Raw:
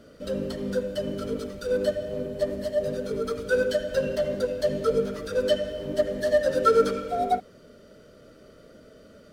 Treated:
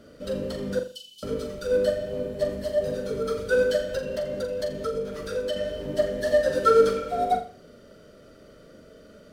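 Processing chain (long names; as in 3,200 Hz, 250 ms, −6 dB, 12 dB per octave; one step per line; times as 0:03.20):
0:00.79–0:01.23: elliptic high-pass filter 2,900 Hz, stop band 40 dB
0:03.90–0:05.56: downward compressor, threshold −27 dBFS, peak gain reduction 10 dB
flutter between parallel walls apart 7.2 metres, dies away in 0.36 s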